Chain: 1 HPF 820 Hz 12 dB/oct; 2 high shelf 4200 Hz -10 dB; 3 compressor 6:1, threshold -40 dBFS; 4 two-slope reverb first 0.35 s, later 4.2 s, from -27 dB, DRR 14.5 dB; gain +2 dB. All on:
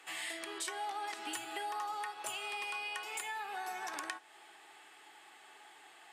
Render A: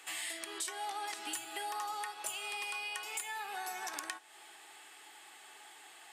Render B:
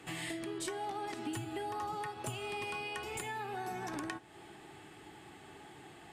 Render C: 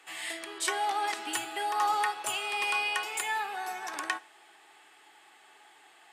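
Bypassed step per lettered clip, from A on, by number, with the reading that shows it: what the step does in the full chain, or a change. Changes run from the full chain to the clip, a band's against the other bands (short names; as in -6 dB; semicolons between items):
2, 8 kHz band +5.0 dB; 1, 250 Hz band +14.0 dB; 3, mean gain reduction 5.0 dB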